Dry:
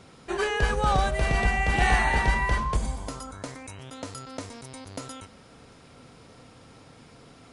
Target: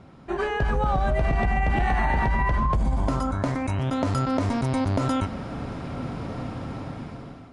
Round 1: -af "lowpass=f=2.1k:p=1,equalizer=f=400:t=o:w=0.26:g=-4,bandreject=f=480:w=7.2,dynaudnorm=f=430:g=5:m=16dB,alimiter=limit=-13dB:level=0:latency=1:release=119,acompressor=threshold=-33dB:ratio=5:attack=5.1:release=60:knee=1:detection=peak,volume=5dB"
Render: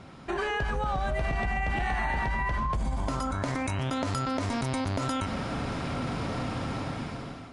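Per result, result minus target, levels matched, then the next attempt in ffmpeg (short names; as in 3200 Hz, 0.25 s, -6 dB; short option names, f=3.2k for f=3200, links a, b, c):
compressor: peak gain reduction +6 dB; 2000 Hz band +3.5 dB
-af "lowpass=f=2.1k:p=1,equalizer=f=400:t=o:w=0.26:g=-4,bandreject=f=480:w=7.2,dynaudnorm=f=430:g=5:m=16dB,alimiter=limit=-13dB:level=0:latency=1:release=119,acompressor=threshold=-25dB:ratio=5:attack=5.1:release=60:knee=1:detection=peak,volume=5dB"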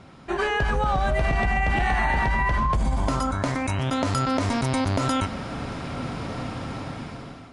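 2000 Hz band +3.5 dB
-af "lowpass=f=780:p=1,equalizer=f=400:t=o:w=0.26:g=-4,bandreject=f=480:w=7.2,dynaudnorm=f=430:g=5:m=16dB,alimiter=limit=-13dB:level=0:latency=1:release=119,acompressor=threshold=-25dB:ratio=5:attack=5.1:release=60:knee=1:detection=peak,volume=5dB"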